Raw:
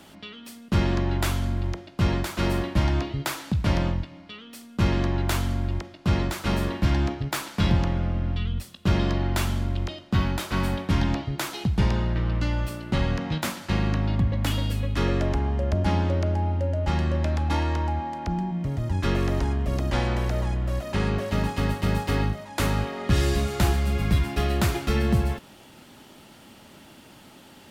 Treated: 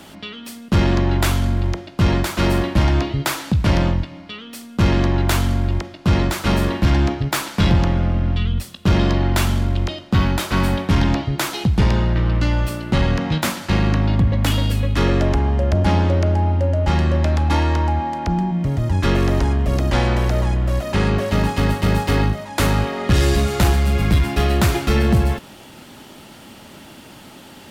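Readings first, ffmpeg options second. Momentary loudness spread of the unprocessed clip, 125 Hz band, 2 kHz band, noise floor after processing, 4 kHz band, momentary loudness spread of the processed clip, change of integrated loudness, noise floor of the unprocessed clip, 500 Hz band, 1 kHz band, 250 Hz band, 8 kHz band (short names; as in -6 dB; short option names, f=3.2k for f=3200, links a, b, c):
6 LU, +7.0 dB, +7.0 dB, -42 dBFS, +7.0 dB, 5 LU, +7.0 dB, -50 dBFS, +7.0 dB, +7.0 dB, +7.0 dB, +7.0 dB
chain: -af "asoftclip=type=tanh:threshold=-15dB,volume=8dB"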